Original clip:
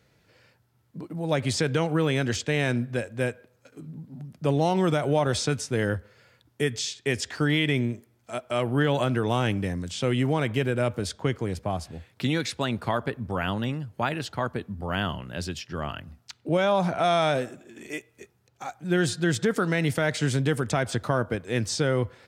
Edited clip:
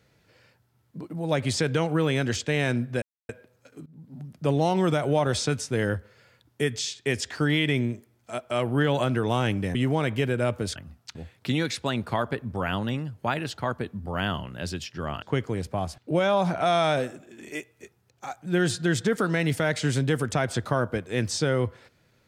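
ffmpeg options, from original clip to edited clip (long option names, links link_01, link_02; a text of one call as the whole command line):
ffmpeg -i in.wav -filter_complex "[0:a]asplit=9[link_01][link_02][link_03][link_04][link_05][link_06][link_07][link_08][link_09];[link_01]atrim=end=3.02,asetpts=PTS-STARTPTS,afade=type=out:start_time=3.016:duration=0.004:curve=hsin[link_10];[link_02]atrim=start=3.02:end=3.29,asetpts=PTS-STARTPTS,volume=0[link_11];[link_03]atrim=start=3.29:end=3.86,asetpts=PTS-STARTPTS,afade=type=in:duration=0.004:curve=hsin,afade=type=out:start_time=0.566:duration=0.004:curve=hsin:silence=0.0944061[link_12];[link_04]atrim=start=3.86:end=9.752,asetpts=PTS-STARTPTS,afade=type=in:duration=0.32:silence=0.0944061[link_13];[link_05]atrim=start=10.128:end=11.142[link_14];[link_06]atrim=start=15.968:end=16.362[link_15];[link_07]atrim=start=11.898:end=15.972[link_16];[link_08]atrim=start=11.138:end=11.902[link_17];[link_09]atrim=start=16.358[link_18];[link_10][link_11][link_12][link_13]concat=n=4:v=0:a=1[link_19];[link_19][link_14]acrossfade=duration=0.004:curve1=hsin:curve2=hsin[link_20];[link_20][link_15]acrossfade=duration=0.004:curve1=hsin:curve2=hsin[link_21];[link_21][link_16]acrossfade=duration=0.004:curve1=hsin:curve2=hsin[link_22];[link_22][link_17]acrossfade=duration=0.004:curve1=hsin:curve2=hsin[link_23];[link_23][link_18]acrossfade=duration=0.004:curve1=hsin:curve2=hsin" out.wav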